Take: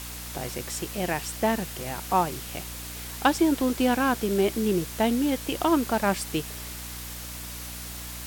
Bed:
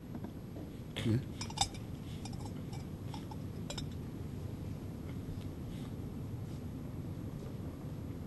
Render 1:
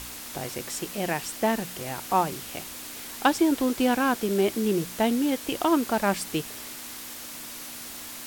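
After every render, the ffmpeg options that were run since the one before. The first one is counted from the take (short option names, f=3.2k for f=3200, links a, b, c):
-af "bandreject=f=60:t=h:w=4,bandreject=f=120:t=h:w=4,bandreject=f=180:t=h:w=4"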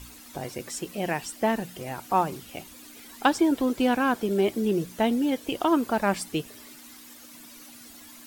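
-af "afftdn=nr=12:nf=-40"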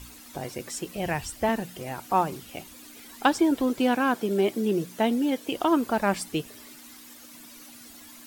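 -filter_complex "[0:a]asettb=1/sr,asplit=3[a][b][c];[a]atrim=end=0.964[d];[b]atrim=start=0.96:end=1.49,asetpts=PTS-STARTPTS,afade=t=in:d=0.004:c=qsin,afade=t=out:st=0.526:d=0.004:c=qsin,lowshelf=f=140:t=q:w=1.5:g=13.5[e];[c]atrim=start=1.486[f];[d][e]acrossfade=d=0.004:c1=hsin:c2=qsin[g];[g][f]acrossfade=d=0.004:c1=qsin:c2=hsin,asettb=1/sr,asplit=3[h][i][j];[h]atrim=end=3.794[k];[i]atrim=start=3.79:end=5.56,asetpts=PTS-STARTPTS,afade=t=in:d=0.004:c=qsin,afade=t=out:st=1.766:d=0.004:c=qsin,highpass=130[l];[j]atrim=start=5.556[m];[k][l]acrossfade=d=0.004:c1=hsin:c2=qsin[n];[n][m]acrossfade=d=0.004:c1=qsin:c2=hsin"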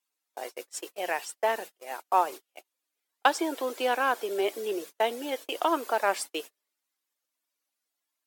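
-af "agate=range=-37dB:threshold=-34dB:ratio=16:detection=peak,highpass=f=420:w=0.5412,highpass=f=420:w=1.3066"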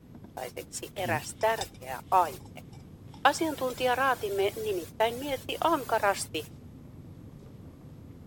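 -filter_complex "[1:a]volume=-4.5dB[a];[0:a][a]amix=inputs=2:normalize=0"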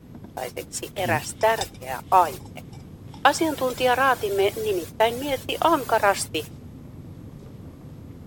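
-af "volume=6.5dB,alimiter=limit=-2dB:level=0:latency=1"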